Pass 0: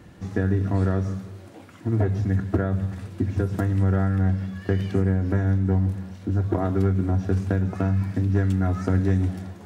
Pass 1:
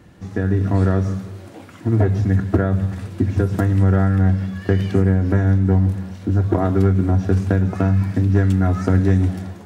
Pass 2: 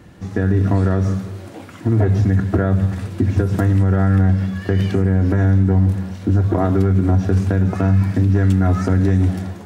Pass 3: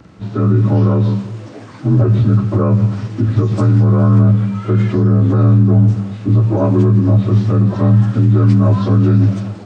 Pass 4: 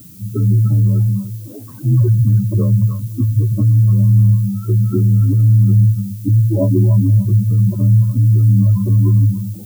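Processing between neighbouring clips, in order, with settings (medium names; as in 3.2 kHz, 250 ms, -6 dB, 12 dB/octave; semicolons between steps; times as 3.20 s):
level rider gain up to 6 dB
peak limiter -11 dBFS, peak gain reduction 5.5 dB; trim +3.5 dB
frequency axis rescaled in octaves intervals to 86%; trim +4.5 dB
spectral contrast enhancement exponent 2.4; repeats whose band climbs or falls 294 ms, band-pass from 1.2 kHz, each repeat 0.7 oct, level 0 dB; added noise violet -42 dBFS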